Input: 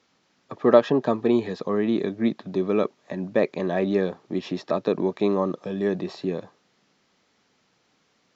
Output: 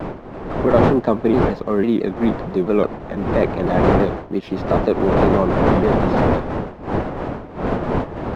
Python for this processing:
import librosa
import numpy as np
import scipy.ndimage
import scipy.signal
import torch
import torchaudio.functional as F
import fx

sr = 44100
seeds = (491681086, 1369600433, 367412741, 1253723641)

p1 = fx.law_mismatch(x, sr, coded='A')
p2 = fx.dmg_wind(p1, sr, seeds[0], corner_hz=600.0, level_db=-23.0)
p3 = fx.high_shelf(p2, sr, hz=4000.0, db=-10.5)
p4 = fx.over_compress(p3, sr, threshold_db=-20.0, ratio=-0.5)
p5 = p3 + (p4 * librosa.db_to_amplitude(-0.5))
p6 = fx.vibrato_shape(p5, sr, shape='saw_down', rate_hz=6.0, depth_cents=160.0)
y = p6 * librosa.db_to_amplitude(-1.0)